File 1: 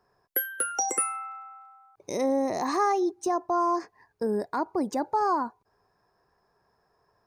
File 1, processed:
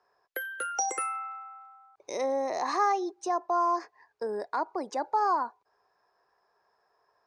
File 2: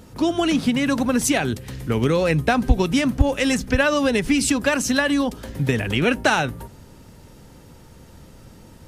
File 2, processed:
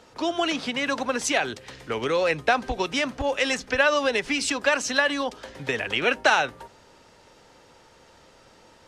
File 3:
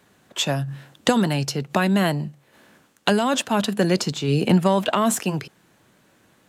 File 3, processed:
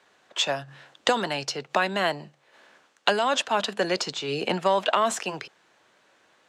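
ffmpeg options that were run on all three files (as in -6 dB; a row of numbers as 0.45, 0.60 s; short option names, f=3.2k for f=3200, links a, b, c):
-filter_complex "[0:a]acrossover=split=410 7300:gain=0.126 1 0.0891[a][b][c];[a][b][c]amix=inputs=3:normalize=0"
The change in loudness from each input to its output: -2.5, -3.5, -4.0 LU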